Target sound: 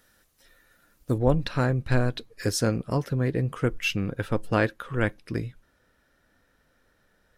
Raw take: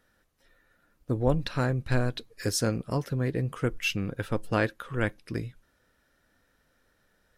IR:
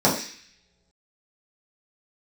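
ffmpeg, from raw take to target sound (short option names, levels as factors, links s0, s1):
-af "asetnsamples=n=441:p=0,asendcmd='1.18 highshelf g -3.5',highshelf=f=3600:g=10.5,volume=1.41"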